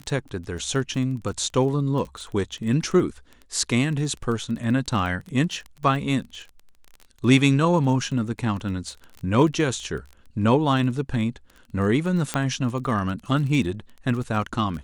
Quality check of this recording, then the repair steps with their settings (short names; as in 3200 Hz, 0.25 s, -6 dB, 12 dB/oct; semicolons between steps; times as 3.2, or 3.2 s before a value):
crackle 21/s -31 dBFS
12.34 pop -9 dBFS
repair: de-click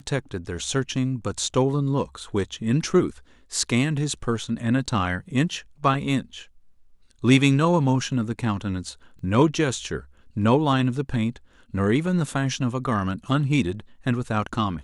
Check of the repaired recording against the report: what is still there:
none